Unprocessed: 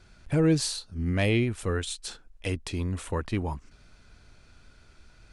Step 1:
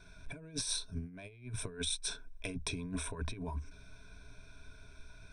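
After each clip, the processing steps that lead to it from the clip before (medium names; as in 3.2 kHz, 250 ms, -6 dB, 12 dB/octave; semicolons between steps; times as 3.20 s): rippled EQ curve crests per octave 1.6, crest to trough 16 dB; compressor with a negative ratio -30 dBFS, ratio -0.5; trim -8.5 dB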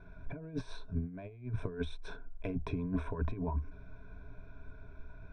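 low-pass 1.2 kHz 12 dB/octave; de-hum 351.4 Hz, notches 4; trim +5 dB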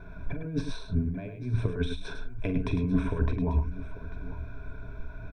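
dynamic bell 800 Hz, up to -6 dB, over -56 dBFS, Q 0.89; multi-tap echo 44/105/843 ms -11/-8/-15.5 dB; trim +8.5 dB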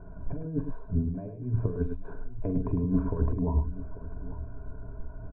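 low-pass 1.1 kHz 24 dB/octave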